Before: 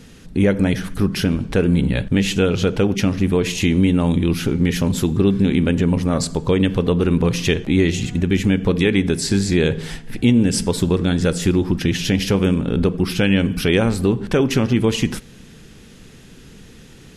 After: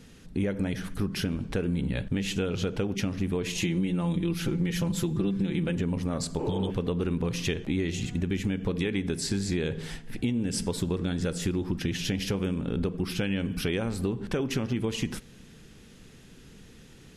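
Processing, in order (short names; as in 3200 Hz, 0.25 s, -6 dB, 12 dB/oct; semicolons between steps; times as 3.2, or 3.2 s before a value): 3.55–5.76 comb 5.9 ms, depth 74%; 6.41–6.68 spectral repair 250–3000 Hz before; compressor, threshold -16 dBFS, peak gain reduction 7.5 dB; gain -8 dB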